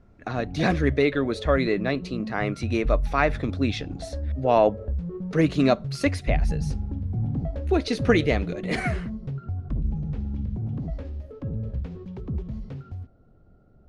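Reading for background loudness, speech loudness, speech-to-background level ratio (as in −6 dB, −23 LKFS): −32.0 LKFS, −25.0 LKFS, 7.0 dB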